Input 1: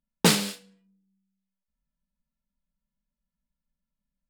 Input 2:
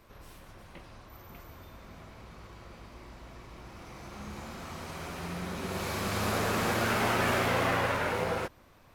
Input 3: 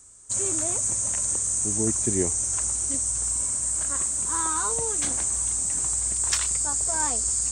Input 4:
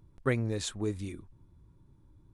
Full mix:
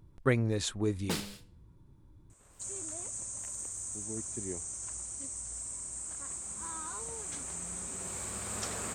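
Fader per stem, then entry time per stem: -15.0, -12.0, -14.5, +1.5 dB; 0.85, 2.30, 2.30, 0.00 s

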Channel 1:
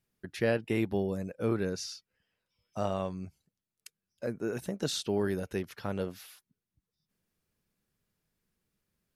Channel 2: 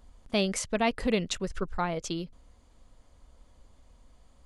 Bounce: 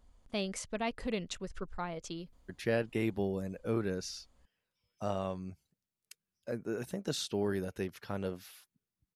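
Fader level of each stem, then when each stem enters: -3.0, -8.5 dB; 2.25, 0.00 s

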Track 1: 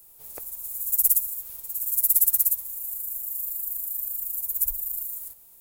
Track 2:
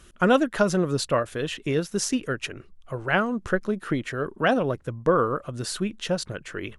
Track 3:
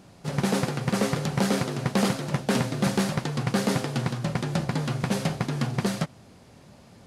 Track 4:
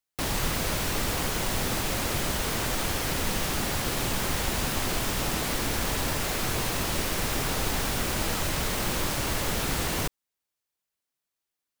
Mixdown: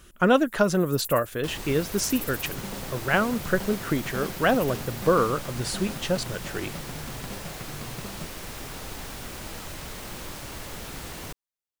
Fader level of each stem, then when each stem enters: -17.0, 0.0, -13.5, -9.5 dB; 0.00, 0.00, 2.20, 1.25 s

